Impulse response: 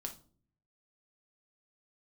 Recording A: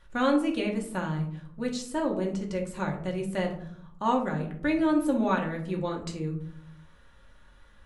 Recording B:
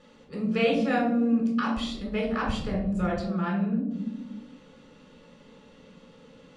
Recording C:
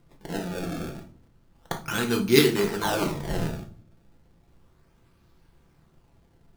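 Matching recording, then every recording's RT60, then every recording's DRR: C; 0.65 s, 1.1 s, no single decay rate; 0.0 dB, -1.5 dB, 3.0 dB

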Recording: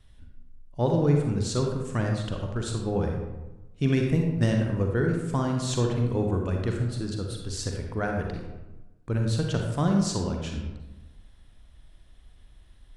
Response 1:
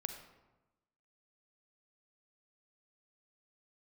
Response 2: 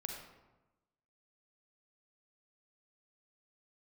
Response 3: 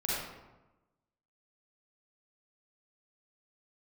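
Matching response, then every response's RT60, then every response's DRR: 2; 1.1 s, 1.1 s, 1.1 s; 6.5 dB, 1.5 dB, -7.5 dB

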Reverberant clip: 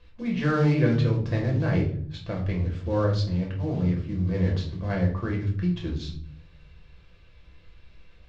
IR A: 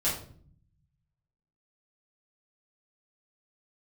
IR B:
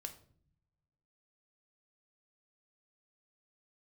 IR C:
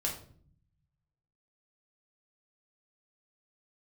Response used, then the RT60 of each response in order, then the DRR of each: C; 0.55 s, no single decay rate, 0.55 s; -9.0 dB, 6.0 dB, -1.5 dB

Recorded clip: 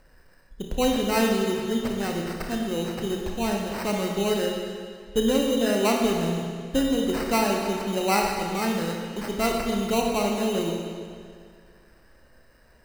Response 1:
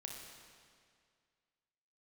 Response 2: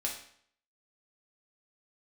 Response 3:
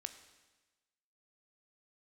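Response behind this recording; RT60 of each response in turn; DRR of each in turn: 1; 2.1 s, 0.60 s, 1.2 s; 0.5 dB, -1.5 dB, 9.0 dB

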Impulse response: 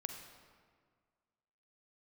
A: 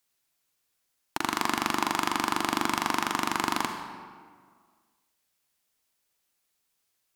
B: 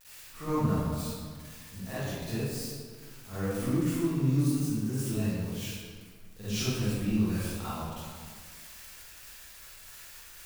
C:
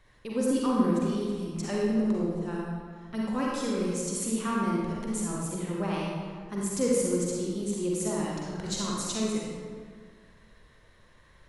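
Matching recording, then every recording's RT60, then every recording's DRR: A; 1.8 s, 1.8 s, 1.8 s; 4.5 dB, -14.5 dB, -5.0 dB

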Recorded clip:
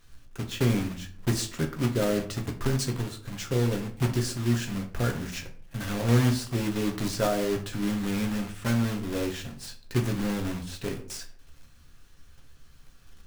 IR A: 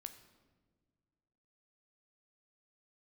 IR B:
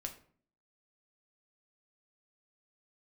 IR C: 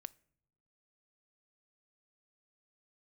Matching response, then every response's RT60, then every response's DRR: B; no single decay rate, 0.50 s, no single decay rate; 8.0 dB, 3.5 dB, 18.5 dB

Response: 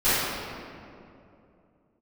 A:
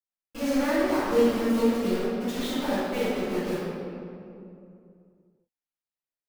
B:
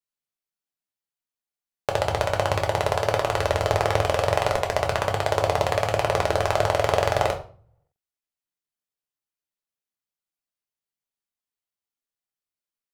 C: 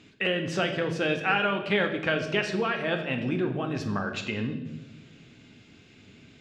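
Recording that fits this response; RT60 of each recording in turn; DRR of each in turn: A; 2.7 s, 0.40 s, 1.2 s; -18.5 dB, 2.0 dB, 4.0 dB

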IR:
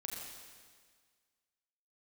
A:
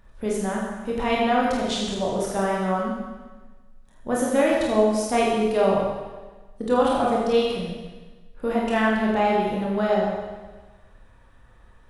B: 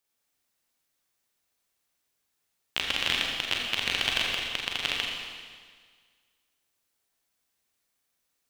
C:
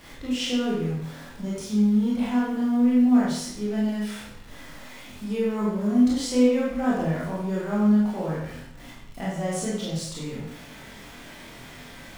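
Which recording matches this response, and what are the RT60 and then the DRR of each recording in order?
B; 1.3 s, 1.7 s, 0.75 s; -4.5 dB, -2.0 dB, -7.0 dB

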